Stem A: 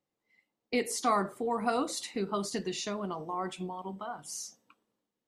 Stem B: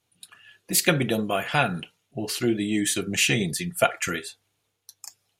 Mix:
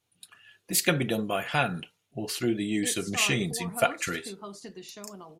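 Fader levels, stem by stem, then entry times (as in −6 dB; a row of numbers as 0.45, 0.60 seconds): −9.0, −3.5 decibels; 2.10, 0.00 seconds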